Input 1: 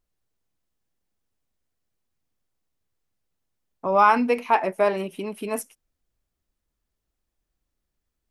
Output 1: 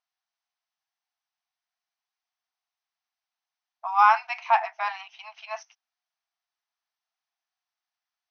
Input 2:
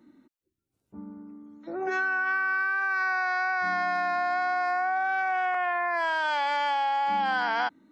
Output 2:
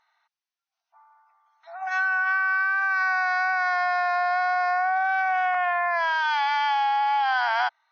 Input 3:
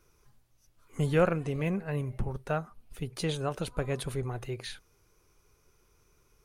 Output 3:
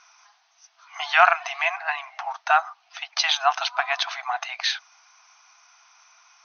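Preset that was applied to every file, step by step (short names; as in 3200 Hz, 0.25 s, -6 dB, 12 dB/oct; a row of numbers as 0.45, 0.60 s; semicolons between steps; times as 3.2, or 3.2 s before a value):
brick-wall FIR band-pass 650–6400 Hz; match loudness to -23 LUFS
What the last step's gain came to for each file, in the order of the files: -0.5, +3.5, +17.5 dB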